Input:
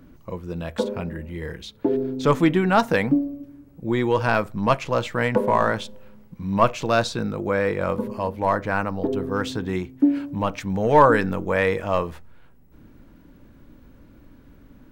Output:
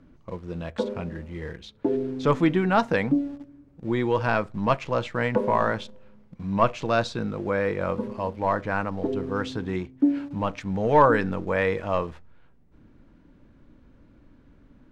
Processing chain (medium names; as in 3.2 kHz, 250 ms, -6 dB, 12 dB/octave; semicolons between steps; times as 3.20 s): in parallel at -10 dB: small samples zeroed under -33 dBFS; on the sum: distance through air 77 m; trim -5 dB